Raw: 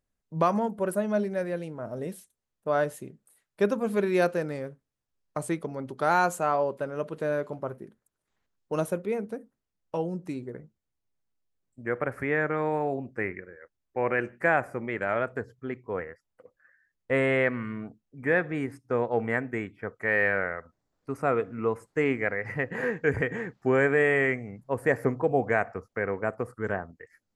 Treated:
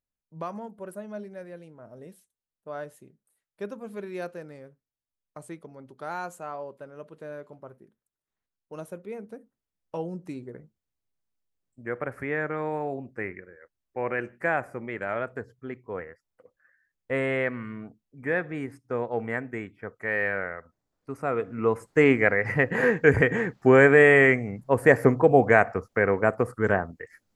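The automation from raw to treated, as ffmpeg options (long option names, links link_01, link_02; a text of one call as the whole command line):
ffmpeg -i in.wav -af "volume=7dB,afade=type=in:start_time=8.81:duration=1.23:silence=0.375837,afade=type=in:start_time=21.31:duration=0.72:silence=0.334965" out.wav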